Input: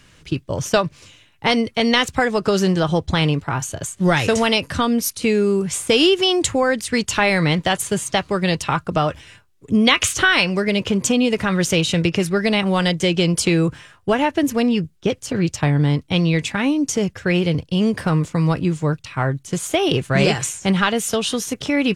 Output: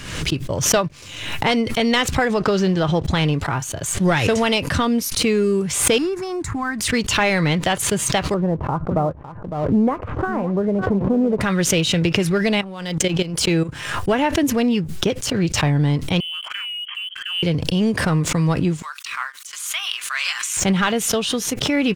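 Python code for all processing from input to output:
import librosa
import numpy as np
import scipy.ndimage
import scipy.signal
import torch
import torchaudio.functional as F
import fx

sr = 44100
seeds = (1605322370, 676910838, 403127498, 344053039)

y = fx.chain(x, sr, fx.law_mismatch(coded='A'),
    fx.lowpass(hz=5400.0, slope=12), at=(2.34, 3.05))
y = fx.chain(y, sr, fx.high_shelf(hz=2700.0, db=-9.5),
    fx.fixed_phaser(hz=1300.0, stages=4), at=(5.98, 6.81))
y = fx.chain(y, sr, fx.lowpass(hz=1000.0, slope=24),
    fx.echo_single(ms=556, db=-14.0), at=(8.34, 11.41))
y = fx.chain(y, sr, fx.high_shelf(hz=9700.0, db=-3.0),
    fx.level_steps(step_db=16), at=(12.61, 13.69))
y = fx.chain(y, sr, fx.freq_invert(carrier_hz=3200),
    fx.highpass(hz=1400.0, slope=24),
    fx.level_steps(step_db=14), at=(16.2, 17.43))
y = fx.chain(y, sr, fx.cheby1_highpass(hz=1100.0, order=4),
    fx.high_shelf(hz=6700.0, db=5.5), at=(18.82, 20.57))
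y = fx.dynamic_eq(y, sr, hz=8400.0, q=0.81, threshold_db=-36.0, ratio=4.0, max_db=-5)
y = fx.leveller(y, sr, passes=1)
y = fx.pre_swell(y, sr, db_per_s=54.0)
y = y * librosa.db_to_amplitude(-4.0)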